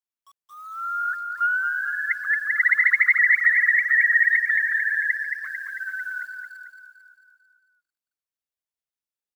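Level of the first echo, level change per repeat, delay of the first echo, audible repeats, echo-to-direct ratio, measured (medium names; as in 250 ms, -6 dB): -5.5 dB, -5.0 dB, 223 ms, 6, -4.0 dB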